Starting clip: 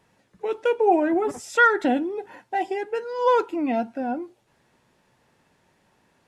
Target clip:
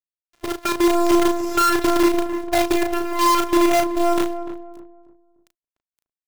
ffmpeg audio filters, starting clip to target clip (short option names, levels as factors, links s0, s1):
-filter_complex "[0:a]lowpass=4100,afftfilt=real='hypot(re,im)*cos(PI*b)':imag='0':win_size=512:overlap=0.75,alimiter=limit=0.106:level=0:latency=1:release=23,acompressor=threshold=0.0355:ratio=5,acrusher=bits=6:dc=4:mix=0:aa=0.000001,dynaudnorm=f=130:g=9:m=5.01,acrusher=bits=3:mode=log:mix=0:aa=0.000001,asplit=2[s0][s1];[s1]adelay=35,volume=0.501[s2];[s0][s2]amix=inputs=2:normalize=0,asplit=2[s3][s4];[s4]adelay=296,lowpass=f=970:p=1,volume=0.316,asplit=2[s5][s6];[s6]adelay=296,lowpass=f=970:p=1,volume=0.36,asplit=2[s7][s8];[s8]adelay=296,lowpass=f=970:p=1,volume=0.36,asplit=2[s9][s10];[s10]adelay=296,lowpass=f=970:p=1,volume=0.36[s11];[s3][s5][s7][s9][s11]amix=inputs=5:normalize=0,volume=0.841"